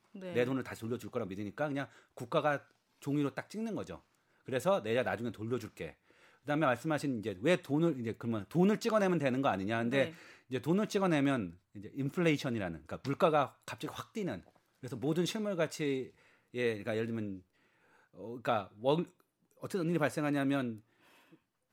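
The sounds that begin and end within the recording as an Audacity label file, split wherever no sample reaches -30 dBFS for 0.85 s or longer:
18.460000	20.690000	sound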